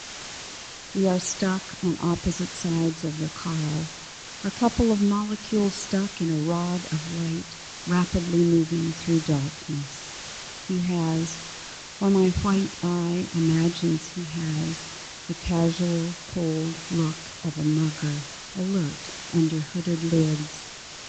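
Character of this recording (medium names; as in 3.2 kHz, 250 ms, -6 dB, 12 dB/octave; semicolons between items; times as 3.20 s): phasing stages 12, 1.1 Hz, lowest notch 640–2400 Hz; a quantiser's noise floor 6-bit, dither triangular; tremolo triangle 0.9 Hz, depth 40%; µ-law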